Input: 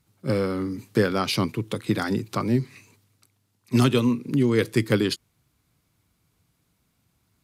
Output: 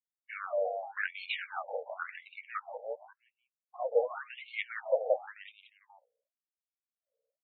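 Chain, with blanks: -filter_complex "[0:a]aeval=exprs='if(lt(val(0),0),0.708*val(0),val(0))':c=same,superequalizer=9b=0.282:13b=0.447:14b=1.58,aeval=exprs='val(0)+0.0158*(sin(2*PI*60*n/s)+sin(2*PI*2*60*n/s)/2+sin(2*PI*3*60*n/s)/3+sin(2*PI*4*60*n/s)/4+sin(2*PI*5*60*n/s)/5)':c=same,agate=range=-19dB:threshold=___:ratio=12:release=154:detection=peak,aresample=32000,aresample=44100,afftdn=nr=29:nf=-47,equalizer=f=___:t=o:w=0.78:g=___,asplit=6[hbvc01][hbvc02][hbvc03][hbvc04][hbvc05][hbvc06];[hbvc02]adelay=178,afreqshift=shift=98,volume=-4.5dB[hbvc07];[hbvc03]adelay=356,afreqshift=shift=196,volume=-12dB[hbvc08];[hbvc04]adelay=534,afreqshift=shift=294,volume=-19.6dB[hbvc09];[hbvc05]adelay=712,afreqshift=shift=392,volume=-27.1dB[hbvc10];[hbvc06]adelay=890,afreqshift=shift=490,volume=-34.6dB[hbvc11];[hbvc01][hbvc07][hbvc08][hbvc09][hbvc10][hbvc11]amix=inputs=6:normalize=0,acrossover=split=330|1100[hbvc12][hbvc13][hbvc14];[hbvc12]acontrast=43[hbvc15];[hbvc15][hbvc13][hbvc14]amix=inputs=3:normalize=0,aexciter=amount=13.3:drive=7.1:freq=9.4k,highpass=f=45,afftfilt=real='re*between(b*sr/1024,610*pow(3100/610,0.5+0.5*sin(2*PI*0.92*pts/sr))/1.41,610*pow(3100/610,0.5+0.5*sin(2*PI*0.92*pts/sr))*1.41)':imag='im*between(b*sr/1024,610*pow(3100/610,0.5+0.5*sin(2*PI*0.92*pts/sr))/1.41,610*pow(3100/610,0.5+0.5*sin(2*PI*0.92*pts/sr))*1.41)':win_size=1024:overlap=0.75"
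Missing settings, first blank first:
-26dB, 540, 2.5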